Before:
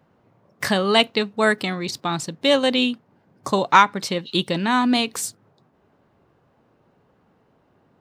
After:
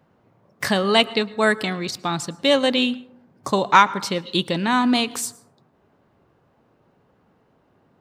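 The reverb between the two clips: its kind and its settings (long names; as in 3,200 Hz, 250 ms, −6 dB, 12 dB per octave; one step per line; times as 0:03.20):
dense smooth reverb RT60 0.76 s, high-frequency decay 0.35×, pre-delay 95 ms, DRR 19 dB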